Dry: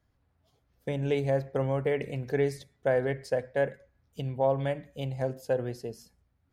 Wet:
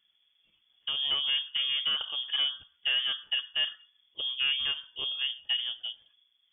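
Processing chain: saturation -22 dBFS, distortion -15 dB; frequency inversion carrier 3.4 kHz

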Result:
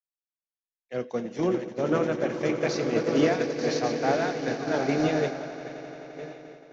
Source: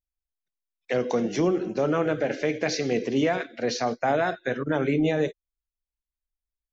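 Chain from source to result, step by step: backward echo that repeats 636 ms, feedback 53%, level -8 dB; echo with a slow build-up 87 ms, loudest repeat 8, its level -13.5 dB; expander -17 dBFS

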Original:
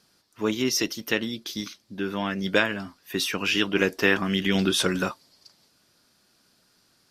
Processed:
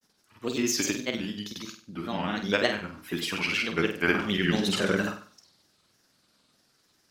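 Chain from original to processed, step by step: granulator, pitch spread up and down by 3 st; flutter echo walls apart 8.3 m, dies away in 0.41 s; trim -2.5 dB

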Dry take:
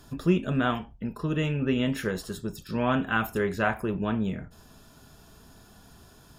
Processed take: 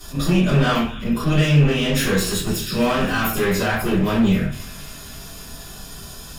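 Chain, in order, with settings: treble shelf 2 kHz +11.5 dB; hum notches 60/120/180 Hz; peak limiter -19 dBFS, peak gain reduction 11 dB; feedback echo behind a high-pass 267 ms, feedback 69%, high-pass 2.1 kHz, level -15 dB; one-sided clip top -30.5 dBFS; simulated room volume 43 m³, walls mixed, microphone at 2.8 m; attacks held to a fixed rise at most 230 dB/s; trim -2.5 dB

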